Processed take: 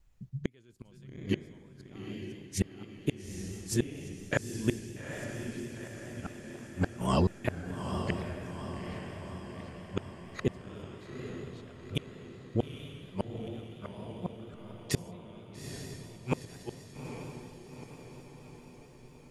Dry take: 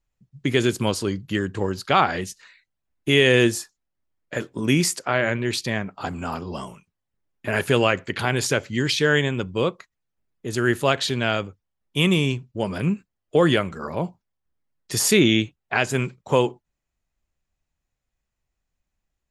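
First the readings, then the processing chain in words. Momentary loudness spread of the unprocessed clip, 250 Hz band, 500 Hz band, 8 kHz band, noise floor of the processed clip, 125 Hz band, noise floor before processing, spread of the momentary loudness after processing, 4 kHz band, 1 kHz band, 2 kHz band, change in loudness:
13 LU, -12.0 dB, -15.5 dB, -15.5 dB, -54 dBFS, -9.5 dB, -82 dBFS, 15 LU, -19.5 dB, -15.5 dB, -19.0 dB, -15.0 dB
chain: chunks repeated in reverse 404 ms, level -2 dB; bass shelf 190 Hz +8 dB; reverse; compression 12:1, threshold -23 dBFS, peak gain reduction 15.5 dB; reverse; inverted gate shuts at -20 dBFS, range -38 dB; on a send: echo that smears into a reverb 864 ms, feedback 59%, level -6 dB; on the sum: vibrato 4.3 Hz 39 cents; trim +6 dB

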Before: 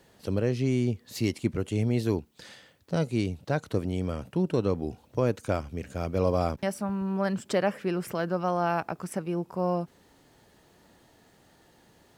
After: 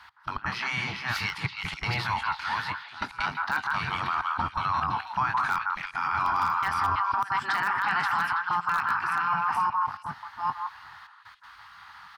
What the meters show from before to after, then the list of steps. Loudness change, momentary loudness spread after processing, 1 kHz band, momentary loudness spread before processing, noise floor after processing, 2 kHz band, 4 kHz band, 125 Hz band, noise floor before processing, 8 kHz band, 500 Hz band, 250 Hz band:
+1.5 dB, 9 LU, +10.5 dB, 6 LU, -51 dBFS, +12.5 dB, +7.5 dB, -9.0 dB, -61 dBFS, no reading, -19.5 dB, -15.0 dB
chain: chunks repeated in reverse 389 ms, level -5 dB; high-pass 110 Hz 12 dB/octave; doubling 21 ms -8.5 dB; trance gate "x..x.xxxxxxxxxx" 164 bpm -24 dB; spectral gate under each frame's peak -10 dB weak; FFT filter 170 Hz 0 dB, 540 Hz -23 dB, 860 Hz +9 dB, 1.4 kHz +12 dB, 2.6 kHz +2 dB, 4.9 kHz +2 dB, 7.3 kHz -13 dB, 10 kHz -9 dB; repeats whose band climbs or falls 164 ms, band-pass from 1.2 kHz, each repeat 1.4 oct, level -4.5 dB; in parallel at -11 dB: integer overflow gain 17.5 dB; on the sum: treble shelf 3.7 kHz -7 dB; peak limiter -26 dBFS, peak gain reduction 15.5 dB; trim +8.5 dB

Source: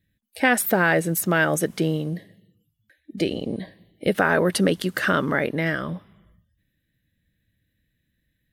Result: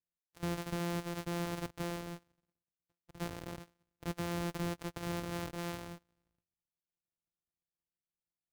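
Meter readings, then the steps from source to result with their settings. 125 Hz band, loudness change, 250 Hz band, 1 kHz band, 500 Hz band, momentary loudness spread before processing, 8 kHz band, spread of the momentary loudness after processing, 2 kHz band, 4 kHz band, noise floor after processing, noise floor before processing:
-12.5 dB, -17.5 dB, -15.5 dB, -17.0 dB, -19.0 dB, 14 LU, -18.5 dB, 11 LU, -24.0 dB, -14.0 dB, under -85 dBFS, -75 dBFS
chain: sorted samples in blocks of 256 samples; power-law waveshaper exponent 1.4; saturation -22.5 dBFS, distortion -8 dB; trim -8 dB

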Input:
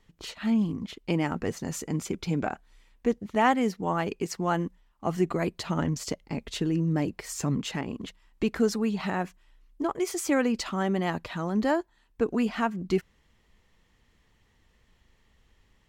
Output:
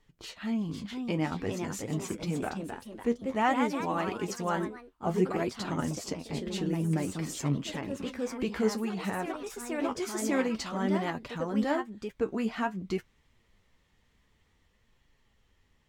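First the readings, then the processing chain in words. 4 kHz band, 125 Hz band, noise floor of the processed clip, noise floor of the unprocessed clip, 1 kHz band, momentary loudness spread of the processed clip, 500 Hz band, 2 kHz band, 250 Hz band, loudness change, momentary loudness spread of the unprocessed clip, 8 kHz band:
-2.5 dB, -3.0 dB, -70 dBFS, -66 dBFS, -2.5 dB, 8 LU, -2.5 dB, -2.5 dB, -3.0 dB, -3.0 dB, 9 LU, -3.0 dB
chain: flange 0.53 Hz, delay 6.6 ms, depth 8.9 ms, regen +46%; ever faster or slower copies 527 ms, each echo +2 st, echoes 3, each echo -6 dB

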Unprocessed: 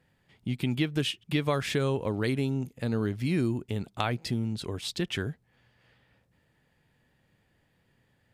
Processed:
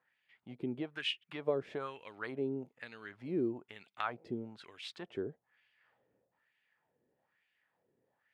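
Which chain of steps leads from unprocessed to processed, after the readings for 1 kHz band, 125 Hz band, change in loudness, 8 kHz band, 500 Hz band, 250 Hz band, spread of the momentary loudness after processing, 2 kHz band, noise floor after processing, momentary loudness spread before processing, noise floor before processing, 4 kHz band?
-7.0 dB, -19.5 dB, -9.5 dB, under -20 dB, -6.0 dB, -10.5 dB, 13 LU, -8.0 dB, -83 dBFS, 6 LU, -71 dBFS, -8.0 dB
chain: LFO band-pass sine 1.1 Hz 390–2600 Hz

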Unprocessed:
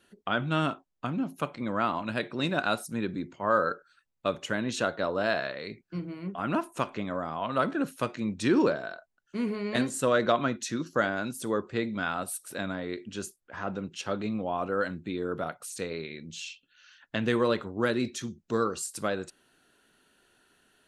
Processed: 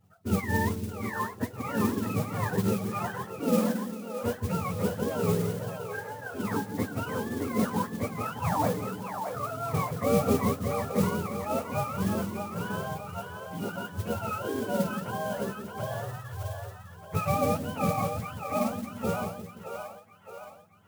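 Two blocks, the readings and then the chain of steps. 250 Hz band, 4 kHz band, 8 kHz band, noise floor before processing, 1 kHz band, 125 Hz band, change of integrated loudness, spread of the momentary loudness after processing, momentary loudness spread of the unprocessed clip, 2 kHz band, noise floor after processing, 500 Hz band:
+0.5 dB, -6.0 dB, -1.5 dB, -72 dBFS, +0.5 dB, +6.5 dB, 0.0 dB, 11 LU, 12 LU, -4.5 dB, -48 dBFS, -1.0 dB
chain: spectrum inverted on a logarithmic axis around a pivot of 530 Hz; two-band feedback delay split 440 Hz, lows 173 ms, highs 619 ms, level -6 dB; modulation noise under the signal 16 dB

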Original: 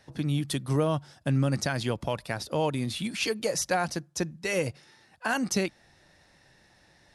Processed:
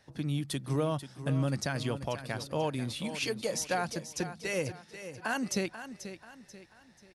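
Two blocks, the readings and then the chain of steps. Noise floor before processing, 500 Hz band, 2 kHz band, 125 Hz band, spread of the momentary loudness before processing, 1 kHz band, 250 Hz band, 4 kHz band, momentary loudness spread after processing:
-62 dBFS, -4.0 dB, -4.0 dB, -4.0 dB, 6 LU, -4.0 dB, -4.0 dB, -4.0 dB, 13 LU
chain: feedback delay 487 ms, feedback 39%, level -11.5 dB; trim -4.5 dB

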